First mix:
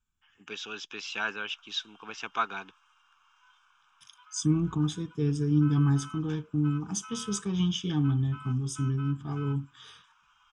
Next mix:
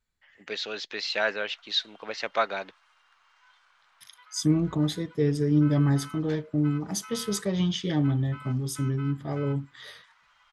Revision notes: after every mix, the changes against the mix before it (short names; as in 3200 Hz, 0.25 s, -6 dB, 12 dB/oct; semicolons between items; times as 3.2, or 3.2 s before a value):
master: remove fixed phaser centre 2900 Hz, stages 8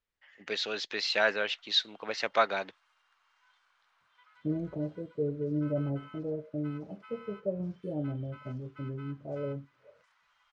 second voice: add ladder low-pass 630 Hz, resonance 70%; background -7.5 dB